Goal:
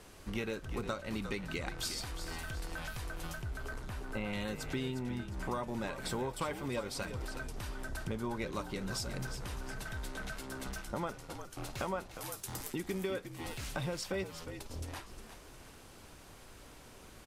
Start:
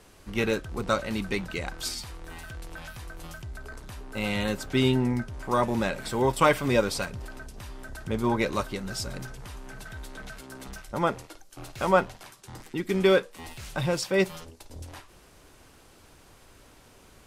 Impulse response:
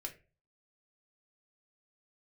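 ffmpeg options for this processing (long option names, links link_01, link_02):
-filter_complex "[0:a]asettb=1/sr,asplit=3[link_01][link_02][link_03];[link_01]atrim=end=3.354[link_04];[link_02]atrim=start=3.35:end=4.33,asetpts=PTS-STARTPTS,afade=type=in:duration=0.004:curve=qsin,afade=type=out:start_time=0.976:duration=0.004:curve=qsin,acrossover=split=2800[link_05][link_06];[link_06]acompressor=threshold=-53dB:ratio=4:attack=1:release=60[link_07];[link_05][link_07]amix=inputs=2:normalize=0[link_08];[link_03]atrim=start=4.326[link_09];[link_04][link_08]acrossfade=duration=0.004:curve1=hsin:curve2=qsin[link_10];[link_10][link_09]acrossfade=duration=0.004:curve1=qsin:curve2=hsin,asettb=1/sr,asplit=3[link_11][link_12][link_13];[link_11]atrim=end=12.144[link_14];[link_12]atrim=start=12.14:end=12.76,asetpts=PTS-STARTPTS,afade=type=in:duration=0.004:curve=qsin,afade=type=out:start_time=0.616:duration=0.004:curve=qsin,aemphasis=mode=production:type=50fm[link_15];[link_13]atrim=start=12.756[link_16];[link_14][link_15]acrossfade=duration=0.004:curve1=hsin:curve2=qsin[link_17];[link_17][link_16]acrossfade=duration=0.004:curve1=qsin:curve2=hsin,acompressor=threshold=-34dB:ratio=8,asplit=5[link_18][link_19][link_20][link_21][link_22];[link_19]adelay=357,afreqshift=-58,volume=-10dB[link_23];[link_20]adelay=714,afreqshift=-116,volume=-18dB[link_24];[link_21]adelay=1071,afreqshift=-174,volume=-25.9dB[link_25];[link_22]adelay=1428,afreqshift=-232,volume=-33.9dB[link_26];[link_18][link_23][link_24][link_25][link_26]amix=inputs=5:normalize=0" -ar 48000 -c:a libmp3lame -b:a 128k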